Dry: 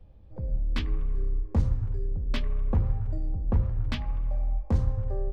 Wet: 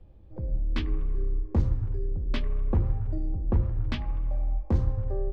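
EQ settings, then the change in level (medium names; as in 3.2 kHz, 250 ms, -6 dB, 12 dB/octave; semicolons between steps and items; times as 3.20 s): distance through air 61 m; peaking EQ 340 Hz +8 dB 0.34 oct; 0.0 dB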